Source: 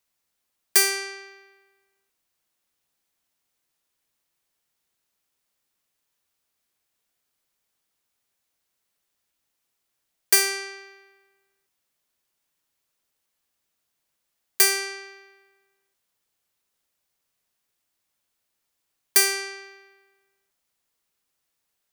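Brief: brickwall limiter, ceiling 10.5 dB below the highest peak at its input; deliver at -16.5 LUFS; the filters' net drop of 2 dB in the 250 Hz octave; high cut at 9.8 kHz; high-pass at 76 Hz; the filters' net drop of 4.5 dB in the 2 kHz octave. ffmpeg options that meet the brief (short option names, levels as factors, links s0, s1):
-af "highpass=76,lowpass=9800,equalizer=f=250:t=o:g=-5,equalizer=f=2000:t=o:g=-5.5,volume=4.73,alimiter=limit=0.596:level=0:latency=1"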